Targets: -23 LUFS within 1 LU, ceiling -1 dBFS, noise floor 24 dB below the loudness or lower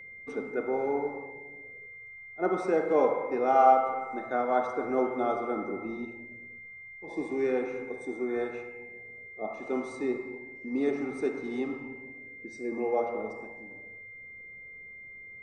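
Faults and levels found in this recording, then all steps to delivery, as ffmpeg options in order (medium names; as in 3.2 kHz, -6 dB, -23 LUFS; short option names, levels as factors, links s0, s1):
steady tone 2.1 kHz; tone level -44 dBFS; loudness -30.0 LUFS; peak level -9.0 dBFS; loudness target -23.0 LUFS
-> -af "bandreject=f=2100:w=30"
-af "volume=2.24"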